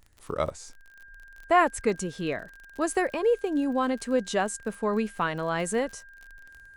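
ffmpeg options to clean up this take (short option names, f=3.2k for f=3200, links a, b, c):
-af "adeclick=t=4,bandreject=f=1.6k:w=30"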